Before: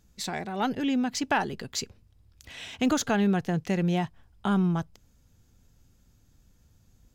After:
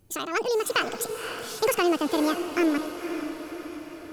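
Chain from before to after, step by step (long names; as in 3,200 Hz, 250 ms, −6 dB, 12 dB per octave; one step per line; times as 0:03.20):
feedback delay with all-pass diffusion 913 ms, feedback 56%, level −8.5 dB
wrong playback speed 45 rpm record played at 78 rpm
level +1.5 dB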